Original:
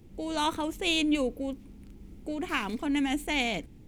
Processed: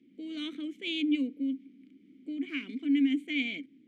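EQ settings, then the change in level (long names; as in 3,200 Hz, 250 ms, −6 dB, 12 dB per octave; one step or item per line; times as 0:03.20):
formant filter i
high-pass filter 200 Hz 12 dB per octave
+5.5 dB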